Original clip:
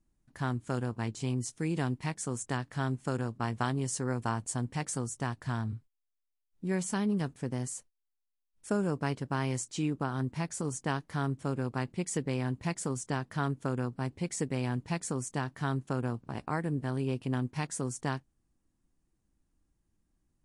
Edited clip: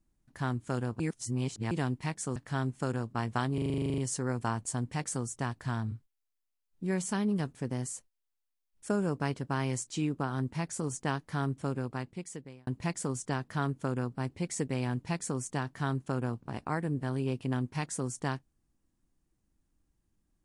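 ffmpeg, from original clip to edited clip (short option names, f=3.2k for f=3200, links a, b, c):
-filter_complex "[0:a]asplit=16[a][b][c][d][e][f][g][h][i][j][k][l][m][n][o][p];[a]atrim=end=1.002[q];[b]atrim=start=0.998:end=1.712,asetpts=PTS-STARTPTS,areverse[r];[c]atrim=start=1.708:end=2.362[s];[d]atrim=start=2.608:end=3.832[t];[e]atrim=start=3.788:end=3.832[u];[f]atrim=start=3.788:end=3.832[v];[g]atrim=start=3.788:end=3.832[w];[h]atrim=start=3.788:end=3.832[x];[i]atrim=start=3.788:end=3.832[y];[j]atrim=start=3.788:end=3.832[z];[k]atrim=start=3.788:end=3.832[aa];[l]atrim=start=3.788:end=3.832[ab];[m]atrim=start=3.788:end=3.832[ac];[n]atrim=start=3.788:end=3.832[ad];[o]atrim=start=3.788:end=12.48,asetpts=PTS-STARTPTS,afade=t=out:st=7.672:d=1.02[ae];[p]atrim=start=12.48,asetpts=PTS-STARTPTS,afade=t=in:d=0.004:c=hsin[af];[q][r]acrossfade=d=0.004:c1=hsin:c2=hsin[ag];[ag][s]acrossfade=d=0.004:c1=hsin:c2=hsin[ah];[ah][t]acrossfade=d=0.004:c1=hsin:c2=hsin[ai];[ai][u]acrossfade=d=0.004:c1=hsin:c2=hsin[aj];[aj][v]acrossfade=d=0.004:c1=hsin:c2=hsin[ak];[ak][w]acrossfade=d=0.004:c1=hsin:c2=hsin[al];[al][x]acrossfade=d=0.004:c1=hsin:c2=hsin[am];[am][y]acrossfade=d=0.004:c1=hsin:c2=hsin[an];[an][z]acrossfade=d=0.004:c1=hsin:c2=hsin[ao];[ao][aa]acrossfade=d=0.004:c1=hsin:c2=hsin[ap];[ap][ab]acrossfade=d=0.004:c1=hsin:c2=hsin[aq];[aq][ac]acrossfade=d=0.004:c1=hsin:c2=hsin[ar];[ar][ad]acrossfade=d=0.004:c1=hsin:c2=hsin[as];[ae][af]concat=n=2:v=0:a=1[at];[as][at]acrossfade=d=0.004:c1=hsin:c2=hsin"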